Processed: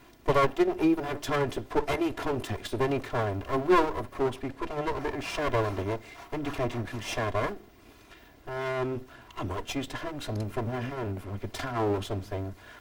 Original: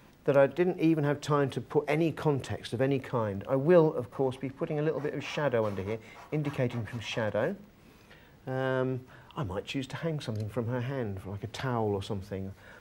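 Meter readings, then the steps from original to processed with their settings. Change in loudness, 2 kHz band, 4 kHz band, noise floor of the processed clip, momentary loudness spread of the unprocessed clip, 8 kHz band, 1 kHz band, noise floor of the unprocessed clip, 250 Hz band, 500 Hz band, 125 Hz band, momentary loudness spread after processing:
0.0 dB, +2.5 dB, +3.0 dB, -54 dBFS, 12 LU, +5.5 dB, +5.5 dB, -56 dBFS, 0.0 dB, -1.0 dB, -2.0 dB, 12 LU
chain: comb filter that takes the minimum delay 2.9 ms; trim +4 dB

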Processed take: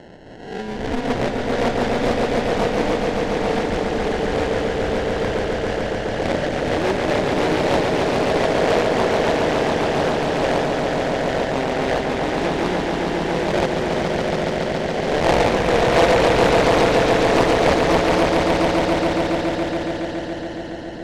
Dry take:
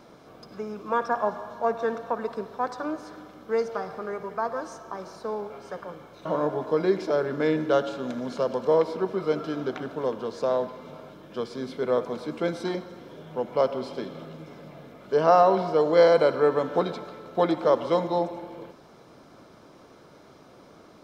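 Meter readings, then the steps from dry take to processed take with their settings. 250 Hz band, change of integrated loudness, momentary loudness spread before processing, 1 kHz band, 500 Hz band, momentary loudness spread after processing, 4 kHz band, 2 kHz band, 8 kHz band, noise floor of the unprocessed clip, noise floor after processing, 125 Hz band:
+10.0 dB, +6.5 dB, 18 LU, +7.5 dB, +6.0 dB, 7 LU, +16.0 dB, +14.5 dB, no reading, -52 dBFS, -29 dBFS, +13.5 dB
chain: reverse spectral sustain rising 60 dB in 0.72 s; high-pass 46 Hz; dynamic bell 430 Hz, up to -5 dB, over -33 dBFS, Q 2.8; in parallel at +3 dB: compression, threshold -31 dBFS, peak gain reduction 16.5 dB; on the sum: sample-and-hold 37×; distance through air 120 m; on a send: echo with a slow build-up 140 ms, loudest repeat 5, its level -5 dB; on the sum: loudspeaker Doppler distortion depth 0.94 ms; trim -1 dB

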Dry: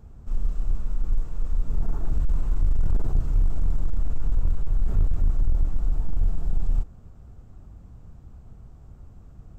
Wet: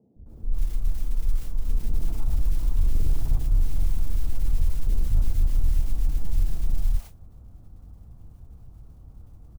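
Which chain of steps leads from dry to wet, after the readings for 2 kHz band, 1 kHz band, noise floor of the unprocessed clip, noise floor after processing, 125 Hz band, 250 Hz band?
no reading, -3.0 dB, -47 dBFS, -49 dBFS, -0.5 dB, -2.5 dB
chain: low-pass 1 kHz 12 dB/octave; band-stop 390 Hz, Q 12; modulation noise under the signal 33 dB; three bands offset in time mids, lows, highs 160/260 ms, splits 180/590 Hz

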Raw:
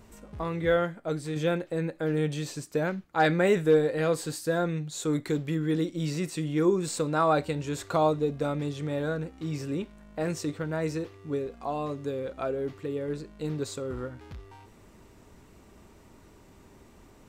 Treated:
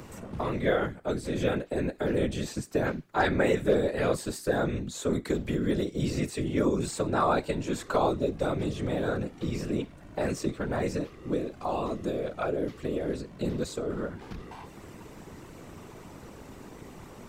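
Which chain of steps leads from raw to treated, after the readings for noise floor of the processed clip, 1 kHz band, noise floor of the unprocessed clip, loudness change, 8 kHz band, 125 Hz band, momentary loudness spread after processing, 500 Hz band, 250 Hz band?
-48 dBFS, -0.5 dB, -55 dBFS, -0.5 dB, -1.5 dB, -1.5 dB, 20 LU, -1.0 dB, 0.0 dB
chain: whisper effect; three bands compressed up and down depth 40%

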